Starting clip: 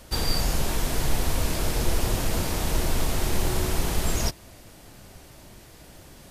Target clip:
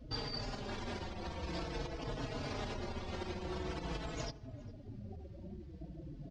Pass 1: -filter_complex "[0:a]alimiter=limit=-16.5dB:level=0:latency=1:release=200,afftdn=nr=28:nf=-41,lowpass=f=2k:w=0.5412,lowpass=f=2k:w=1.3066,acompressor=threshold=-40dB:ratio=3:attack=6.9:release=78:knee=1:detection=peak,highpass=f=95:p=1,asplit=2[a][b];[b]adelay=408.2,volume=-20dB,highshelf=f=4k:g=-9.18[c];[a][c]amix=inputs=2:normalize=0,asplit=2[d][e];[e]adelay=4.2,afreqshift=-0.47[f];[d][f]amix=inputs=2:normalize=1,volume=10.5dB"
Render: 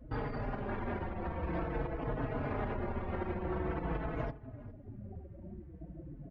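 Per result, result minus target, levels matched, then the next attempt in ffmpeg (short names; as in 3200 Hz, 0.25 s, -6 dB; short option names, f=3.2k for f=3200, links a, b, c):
4000 Hz band -20.0 dB; compressor: peak gain reduction -5 dB
-filter_complex "[0:a]alimiter=limit=-16.5dB:level=0:latency=1:release=200,afftdn=nr=28:nf=-41,lowpass=f=5.3k:w=0.5412,lowpass=f=5.3k:w=1.3066,acompressor=threshold=-40dB:ratio=3:attack=6.9:release=78:knee=1:detection=peak,highpass=f=95:p=1,asplit=2[a][b];[b]adelay=408.2,volume=-20dB,highshelf=f=4k:g=-9.18[c];[a][c]amix=inputs=2:normalize=0,asplit=2[d][e];[e]adelay=4.2,afreqshift=-0.47[f];[d][f]amix=inputs=2:normalize=1,volume=10.5dB"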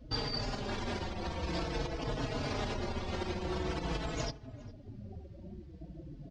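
compressor: peak gain reduction -5 dB
-filter_complex "[0:a]alimiter=limit=-16.5dB:level=0:latency=1:release=200,afftdn=nr=28:nf=-41,lowpass=f=5.3k:w=0.5412,lowpass=f=5.3k:w=1.3066,acompressor=threshold=-47.5dB:ratio=3:attack=6.9:release=78:knee=1:detection=peak,highpass=f=95:p=1,asplit=2[a][b];[b]adelay=408.2,volume=-20dB,highshelf=f=4k:g=-9.18[c];[a][c]amix=inputs=2:normalize=0,asplit=2[d][e];[e]adelay=4.2,afreqshift=-0.47[f];[d][f]amix=inputs=2:normalize=1,volume=10.5dB"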